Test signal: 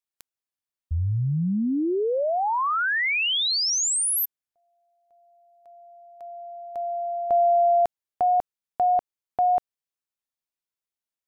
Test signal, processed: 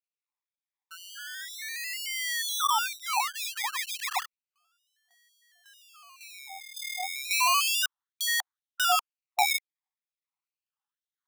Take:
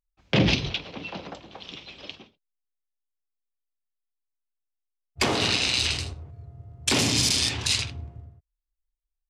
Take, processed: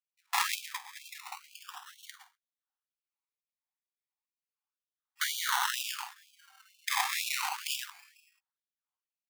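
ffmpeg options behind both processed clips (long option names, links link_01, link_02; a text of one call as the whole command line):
ffmpeg -i in.wav -af "acrusher=samples=24:mix=1:aa=0.000001:lfo=1:lforange=14.4:lforate=0.33,afftfilt=real='re*gte(b*sr/1024,700*pow(2400/700,0.5+0.5*sin(2*PI*2.1*pts/sr)))':imag='im*gte(b*sr/1024,700*pow(2400/700,0.5+0.5*sin(2*PI*2.1*pts/sr)))':win_size=1024:overlap=0.75" out.wav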